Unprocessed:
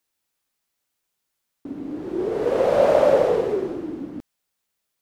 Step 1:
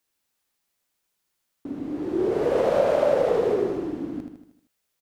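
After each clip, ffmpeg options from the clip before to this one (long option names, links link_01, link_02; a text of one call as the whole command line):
ffmpeg -i in.wav -af "acompressor=threshold=-18dB:ratio=6,aecho=1:1:78|156|234|312|390|468:0.501|0.256|0.13|0.0665|0.0339|0.0173" out.wav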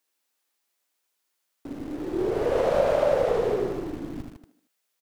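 ffmpeg -i in.wav -filter_complex "[0:a]asubboost=boost=6.5:cutoff=110,acrossover=split=220[link_01][link_02];[link_01]acrusher=bits=5:dc=4:mix=0:aa=0.000001[link_03];[link_03][link_02]amix=inputs=2:normalize=0" out.wav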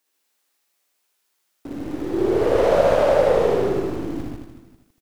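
ffmpeg -i in.wav -af "aecho=1:1:60|138|239.4|371.2|542.6:0.631|0.398|0.251|0.158|0.1,volume=3.5dB" out.wav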